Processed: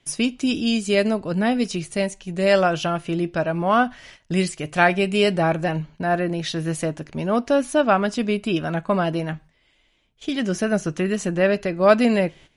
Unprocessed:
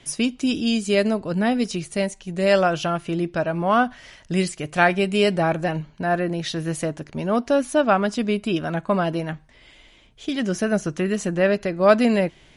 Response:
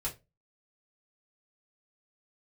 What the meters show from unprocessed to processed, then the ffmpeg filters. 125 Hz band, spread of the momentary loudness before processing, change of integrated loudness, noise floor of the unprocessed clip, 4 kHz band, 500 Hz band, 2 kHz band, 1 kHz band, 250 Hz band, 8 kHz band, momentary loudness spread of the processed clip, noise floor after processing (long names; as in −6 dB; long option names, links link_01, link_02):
+1.0 dB, 8 LU, +0.5 dB, −53 dBFS, +1.0 dB, +0.5 dB, +0.5 dB, +0.5 dB, +0.5 dB, +0.5 dB, 8 LU, −63 dBFS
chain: -filter_complex "[0:a]agate=range=-13dB:threshold=-44dB:ratio=16:detection=peak,asplit=2[link_01][link_02];[link_02]equalizer=frequency=2600:width=1.5:gain=11.5[link_03];[1:a]atrim=start_sample=2205[link_04];[link_03][link_04]afir=irnorm=-1:irlink=0,volume=-23dB[link_05];[link_01][link_05]amix=inputs=2:normalize=0"